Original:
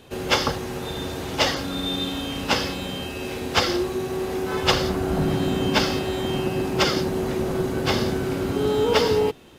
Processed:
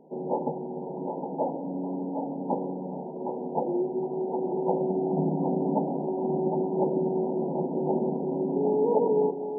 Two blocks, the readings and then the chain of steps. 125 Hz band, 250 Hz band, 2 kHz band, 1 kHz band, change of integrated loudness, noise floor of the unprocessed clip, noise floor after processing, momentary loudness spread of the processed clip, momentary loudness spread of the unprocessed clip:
-7.5 dB, -2.5 dB, under -40 dB, -4.0 dB, -5.0 dB, -32 dBFS, -36 dBFS, 9 LU, 9 LU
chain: thinning echo 763 ms, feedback 37%, high-pass 490 Hz, level -4 dB; FFT band-pass 140–980 Hz; trim -3 dB

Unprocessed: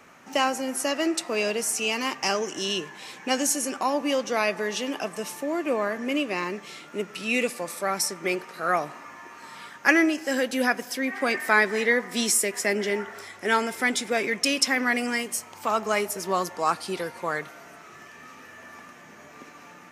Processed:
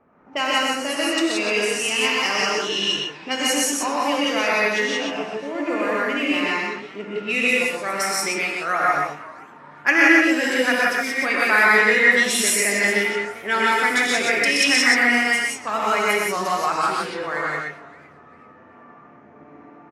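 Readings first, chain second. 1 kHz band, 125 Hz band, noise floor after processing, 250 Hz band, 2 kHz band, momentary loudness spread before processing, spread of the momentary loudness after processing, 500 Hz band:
+5.5 dB, no reading, -47 dBFS, +3.5 dB, +9.0 dB, 18 LU, 12 LU, +3.0 dB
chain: dynamic bell 2.1 kHz, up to +7 dB, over -37 dBFS, Q 0.71; on a send: delay 124 ms -3 dB; on the sum: level-controlled noise filter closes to 850 Hz, open at -18 dBFS; gated-style reverb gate 200 ms rising, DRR -4 dB; modulated delay 391 ms, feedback 31%, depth 208 cents, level -21.5 dB; trim -4.5 dB

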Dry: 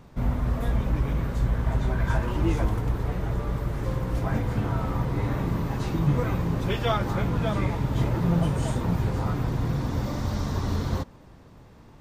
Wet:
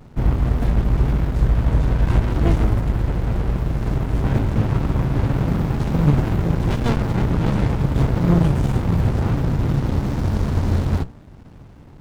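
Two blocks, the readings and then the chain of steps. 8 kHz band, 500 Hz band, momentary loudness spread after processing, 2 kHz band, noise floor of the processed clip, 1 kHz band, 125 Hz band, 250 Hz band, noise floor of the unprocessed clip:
no reading, +4.0 dB, 5 LU, +3.0 dB, -43 dBFS, +2.5 dB, +7.0 dB, +6.5 dB, -50 dBFS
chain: hum notches 60/120/180/240/300 Hz; vibrato 0.89 Hz 25 cents; sliding maximum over 65 samples; trim +9 dB

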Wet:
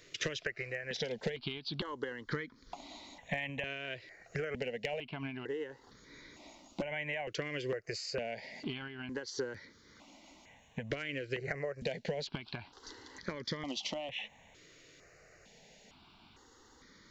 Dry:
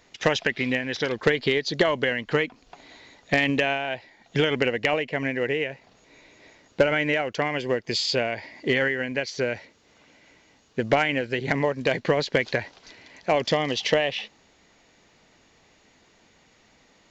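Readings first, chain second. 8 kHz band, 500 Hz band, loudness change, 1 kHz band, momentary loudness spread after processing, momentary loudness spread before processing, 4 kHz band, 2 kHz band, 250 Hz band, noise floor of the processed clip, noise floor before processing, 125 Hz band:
no reading, -15.0 dB, -14.5 dB, -17.0 dB, 21 LU, 8 LU, -12.5 dB, -15.0 dB, -14.5 dB, -62 dBFS, -60 dBFS, -11.5 dB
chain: compression 12:1, threshold -33 dBFS, peak gain reduction 19 dB; stepped phaser 2.2 Hz 220–2700 Hz; trim +2 dB

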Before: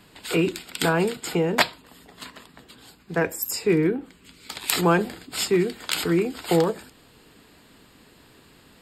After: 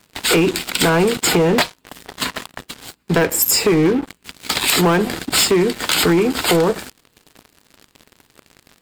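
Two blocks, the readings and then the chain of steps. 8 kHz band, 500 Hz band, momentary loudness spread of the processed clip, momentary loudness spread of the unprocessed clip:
+12.0 dB, +6.5 dB, 16 LU, 13 LU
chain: compression 8:1, threshold -27 dBFS, peak gain reduction 14 dB; waveshaping leveller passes 5; bit crusher 12-bit

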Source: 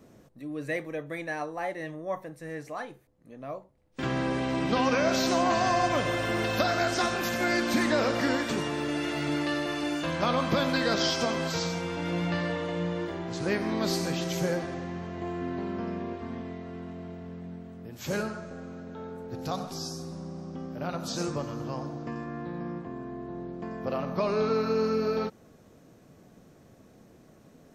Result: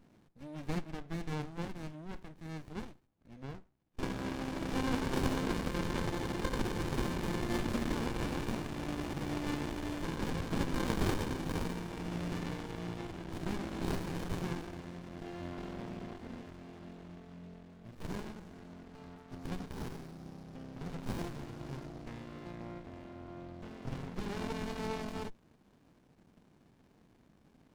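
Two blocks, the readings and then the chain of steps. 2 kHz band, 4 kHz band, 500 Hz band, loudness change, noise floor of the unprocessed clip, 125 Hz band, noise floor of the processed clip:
-12.0 dB, -12.0 dB, -12.0 dB, -9.0 dB, -57 dBFS, -4.0 dB, -66 dBFS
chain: frequency weighting D; sliding maximum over 65 samples; trim -5.5 dB

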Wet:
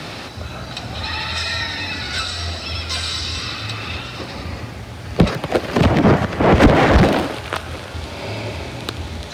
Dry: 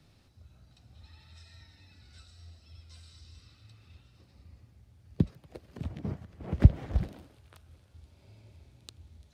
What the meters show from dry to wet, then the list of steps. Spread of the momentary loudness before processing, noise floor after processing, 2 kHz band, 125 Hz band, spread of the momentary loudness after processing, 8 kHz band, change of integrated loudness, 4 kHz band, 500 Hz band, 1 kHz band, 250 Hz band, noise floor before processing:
17 LU, -32 dBFS, +33.5 dB, +11.0 dB, 17 LU, no reading, +10.5 dB, +33.0 dB, +28.0 dB, +33.0 dB, +18.5 dB, -62 dBFS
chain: sine folder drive 10 dB, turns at -3 dBFS; overdrive pedal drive 34 dB, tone 2.3 kHz, clips at -2.5 dBFS

